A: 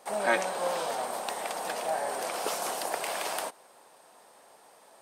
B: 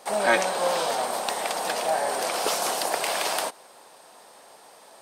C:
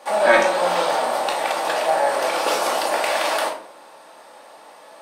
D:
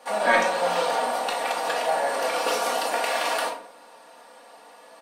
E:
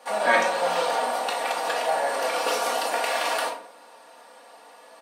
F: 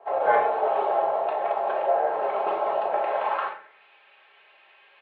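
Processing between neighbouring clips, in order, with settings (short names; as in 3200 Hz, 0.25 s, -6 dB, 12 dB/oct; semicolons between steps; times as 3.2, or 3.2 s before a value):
bell 4400 Hz +4 dB 1.2 oct; in parallel at -5.5 dB: overloaded stage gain 22.5 dB; on the sum: gain +2 dB
tone controls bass -11 dB, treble -8 dB; shoebox room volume 540 m³, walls furnished, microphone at 2.4 m; gain +3.5 dB
comb 4.2 ms, depth 64%; gain -5 dB
HPF 200 Hz 6 dB/oct
mistuned SSB -100 Hz 170–3600 Hz; band-pass sweep 750 Hz -> 2500 Hz, 3.19–3.84; gain +5 dB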